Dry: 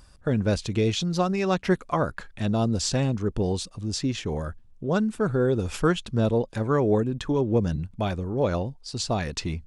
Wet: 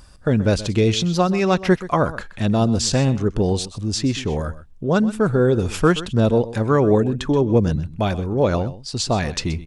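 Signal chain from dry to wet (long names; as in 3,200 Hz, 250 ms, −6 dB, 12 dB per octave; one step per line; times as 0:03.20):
single-tap delay 127 ms −16 dB
level +6 dB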